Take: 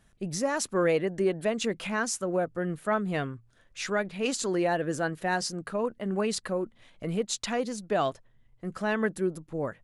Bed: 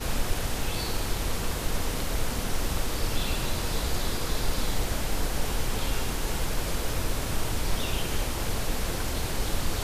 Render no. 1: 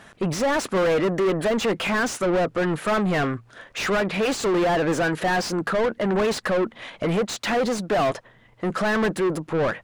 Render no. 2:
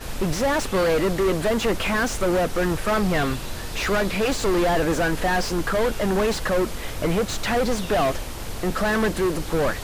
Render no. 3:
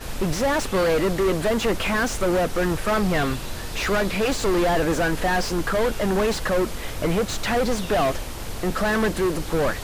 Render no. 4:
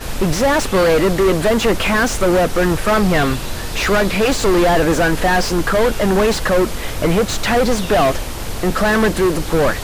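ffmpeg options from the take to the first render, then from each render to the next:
-filter_complex "[0:a]asplit=2[s0][s1];[s1]highpass=f=720:p=1,volume=39.8,asoftclip=type=tanh:threshold=0.2[s2];[s0][s2]amix=inputs=2:normalize=0,lowpass=f=1700:p=1,volume=0.501"
-filter_complex "[1:a]volume=0.708[s0];[0:a][s0]amix=inputs=2:normalize=0"
-af anull
-af "volume=2.24"

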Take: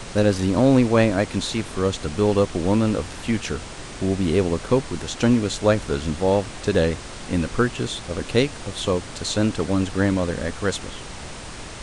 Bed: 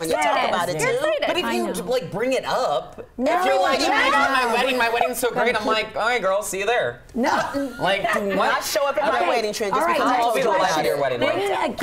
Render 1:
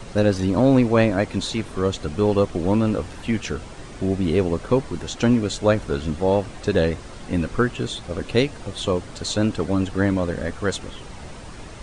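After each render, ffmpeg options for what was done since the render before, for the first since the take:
-af "afftdn=nr=8:nf=-37"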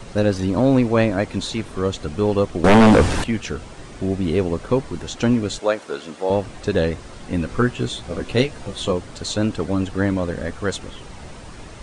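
-filter_complex "[0:a]asettb=1/sr,asplit=3[s0][s1][s2];[s0]atrim=end=2.644[s3];[s1]atrim=start=2.64:end=3.24,asetpts=PTS-STARTPTS,afade=t=in:d=0.004:c=qsin,afade=t=out:st=0.596:d=0.004:c=qsin,aeval=exprs='0.447*sin(PI/2*3.98*val(0)/0.447)':c=same[s4];[s2]atrim=start=3.236[s5];[s3][s4]acrossfade=d=0.004:c1=hsin:c2=qsin[s6];[s6][s5]acrossfade=d=0.004:c1=qsin:c2=hsin,asettb=1/sr,asplit=3[s7][s8][s9];[s7]atrim=end=5.594[s10];[s8]atrim=start=5.59:end=6.3,asetpts=PTS-STARTPTS,afade=t=in:d=0.004:c=qsin,afade=t=out:st=0.706:d=0.004:c=qsin,highpass=390[s11];[s9]atrim=start=6.296[s12];[s10][s11]acrossfade=d=0.004:c1=hsin:c2=qsin[s13];[s13][s12]acrossfade=d=0.004:c1=qsin:c2=hsin,asettb=1/sr,asplit=3[s14][s15][s16];[s14]atrim=end=7.474[s17];[s15]atrim=start=7.47:end=8.92,asetpts=PTS-STARTPTS,afade=t=in:d=0.004:c=qsin,afade=t=out:st=1.446:d=0.004:c=qsin,asplit=2[s18][s19];[s19]adelay=16,volume=0.562[s20];[s18][s20]amix=inputs=2:normalize=0,atrim=end_sample=63945[s21];[s16]atrim=start=8.916[s22];[s17][s21]acrossfade=d=0.004:c1=hsin:c2=qsin[s23];[s23][s22]acrossfade=d=0.004:c1=qsin:c2=hsin"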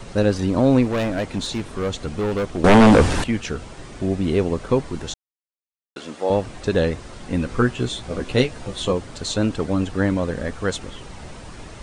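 -filter_complex "[0:a]asettb=1/sr,asplit=3[s0][s1][s2];[s0]atrim=end=0.854[s3];[s1]atrim=start=0.85:end=2.58,asetpts=PTS-STARTPTS,afade=t=in:d=0.004:c=qsin,afade=t=out:st=1.726:d=0.004:c=qsin,asoftclip=type=hard:threshold=0.112[s4];[s2]atrim=start=2.576[s5];[s3][s4]acrossfade=d=0.004:c1=hsin:c2=qsin[s6];[s6][s5]acrossfade=d=0.004:c1=qsin:c2=hsin,asplit=3[s7][s8][s9];[s7]atrim=end=5.14,asetpts=PTS-STARTPTS,afade=t=out:st=5.136:d=0.004:c=hsin[s10];[s8]atrim=start=5.14:end=5.96,asetpts=PTS-STARTPTS,volume=0[s11];[s9]atrim=start=5.96,asetpts=PTS-STARTPTS,afade=t=in:d=0.004:c=hsin[s12];[s10][s11][s12]concat=n=3:v=0:a=1"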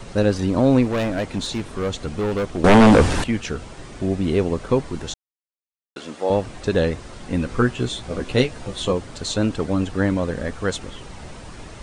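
-af anull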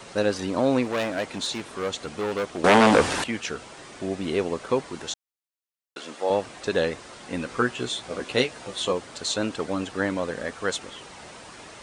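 -af "highpass=f=550:p=1"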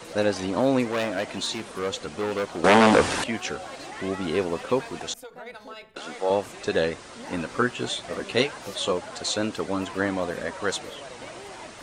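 -filter_complex "[1:a]volume=0.0891[s0];[0:a][s0]amix=inputs=2:normalize=0"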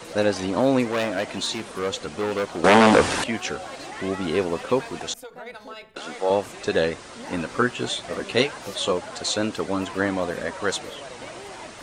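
-af "volume=1.26,alimiter=limit=0.708:level=0:latency=1"

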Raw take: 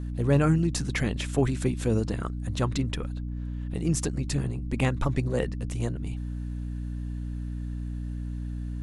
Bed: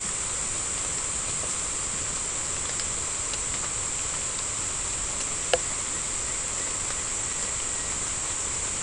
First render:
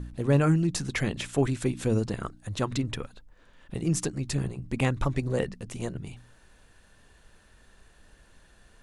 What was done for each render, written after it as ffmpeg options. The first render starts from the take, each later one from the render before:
-af "bandreject=f=60:t=h:w=4,bandreject=f=120:t=h:w=4,bandreject=f=180:t=h:w=4,bandreject=f=240:t=h:w=4,bandreject=f=300:t=h:w=4"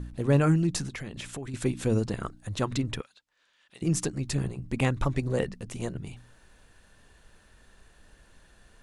-filter_complex "[0:a]asettb=1/sr,asplit=3[s0][s1][s2];[s0]atrim=end=0.884[s3];[s1]atrim=start=0.88:end=1.54,asetpts=PTS-STARTPTS,afade=t=in:d=0.004:c=qsin,afade=t=out:st=0.656:d=0.004:c=qsin,acompressor=threshold=0.02:ratio=6:attack=3.2:release=140:knee=1:detection=peak[s4];[s2]atrim=start=1.536[s5];[s3][s4]acrossfade=d=0.004:c1=hsin:c2=qsin[s6];[s6][s5]acrossfade=d=0.004:c1=qsin:c2=hsin,asettb=1/sr,asplit=3[s7][s8][s9];[s7]atrim=end=3.014[s10];[s8]atrim=start=3.01:end=3.82,asetpts=PTS-STARTPTS,afade=t=in:d=0.004:c=qsin,afade=t=out:st=0.806:d=0.004:c=qsin,bandpass=f=4400:t=q:w=0.74[s11];[s9]atrim=start=3.816[s12];[s10][s11]acrossfade=d=0.004:c1=hsin:c2=qsin[s13];[s13][s12]acrossfade=d=0.004:c1=qsin:c2=hsin"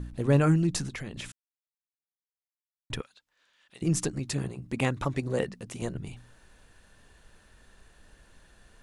-filter_complex "[0:a]asettb=1/sr,asplit=3[s0][s1][s2];[s0]atrim=end=4.194[s3];[s1]atrim=start=4.19:end=5.82,asetpts=PTS-STARTPTS,afade=t=in:d=0.004:c=qsin,afade=t=out:st=1.626:d=0.004:c=qsin,highpass=f=140:p=1[s4];[s2]atrim=start=5.816[s5];[s3][s4]acrossfade=d=0.004:c1=hsin:c2=qsin[s6];[s6][s5]acrossfade=d=0.004:c1=qsin:c2=hsin,asplit=3[s7][s8][s9];[s7]atrim=end=1.32,asetpts=PTS-STARTPTS,afade=t=out:st=1.316:d=0.004:c=hsin[s10];[s8]atrim=start=1.32:end=2.9,asetpts=PTS-STARTPTS,volume=0[s11];[s9]atrim=start=2.9,asetpts=PTS-STARTPTS,afade=t=in:d=0.004:c=hsin[s12];[s10][s11][s12]concat=n=3:v=0:a=1"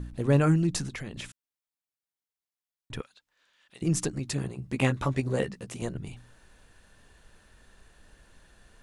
-filter_complex "[0:a]asplit=3[s0][s1][s2];[s0]afade=t=out:st=1.25:d=0.02[s3];[s1]acompressor=threshold=0.00398:ratio=1.5:attack=3.2:release=140:knee=1:detection=peak,afade=t=in:st=1.25:d=0.02,afade=t=out:st=2.94:d=0.02[s4];[s2]afade=t=in:st=2.94:d=0.02[s5];[s3][s4][s5]amix=inputs=3:normalize=0,asettb=1/sr,asplit=3[s6][s7][s8];[s6]atrim=end=4.574[s9];[s7]atrim=start=4.57:end=5.75,asetpts=PTS-STARTPTS,afade=t=in:d=0.004:c=qsin,afade=t=out:st=1.176:d=0.004:c=qsin,asplit=2[s10][s11];[s11]adelay=15,volume=0.531[s12];[s10][s12]amix=inputs=2:normalize=0,atrim=end_sample=52038[s13];[s8]atrim=start=5.746[s14];[s9][s13]acrossfade=d=0.004:c1=hsin:c2=qsin[s15];[s15][s14]acrossfade=d=0.004:c1=qsin:c2=hsin"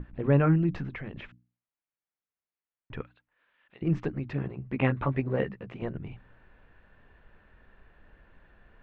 -af "lowpass=f=2500:w=0.5412,lowpass=f=2500:w=1.3066,bandreject=f=60:t=h:w=6,bandreject=f=120:t=h:w=6,bandreject=f=180:t=h:w=6,bandreject=f=240:t=h:w=6,bandreject=f=300:t=h:w=6"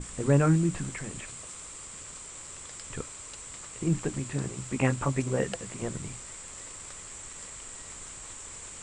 -filter_complex "[1:a]volume=0.2[s0];[0:a][s0]amix=inputs=2:normalize=0"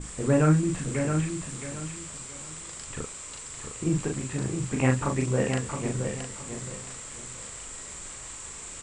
-filter_complex "[0:a]asplit=2[s0][s1];[s1]adelay=39,volume=0.708[s2];[s0][s2]amix=inputs=2:normalize=0,aecho=1:1:669|1338|2007:0.473|0.128|0.0345"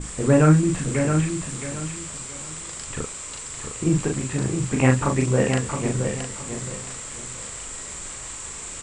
-af "volume=1.88"

